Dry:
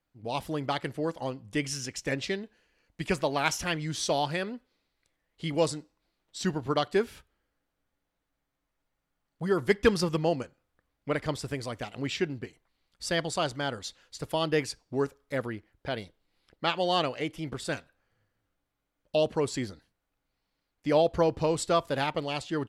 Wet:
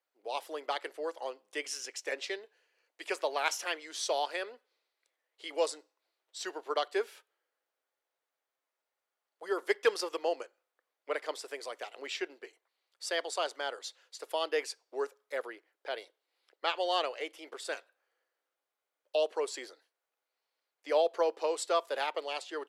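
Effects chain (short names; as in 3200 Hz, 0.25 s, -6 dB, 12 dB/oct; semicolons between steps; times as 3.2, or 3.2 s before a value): steep high-pass 390 Hz 36 dB/oct; gain -3.5 dB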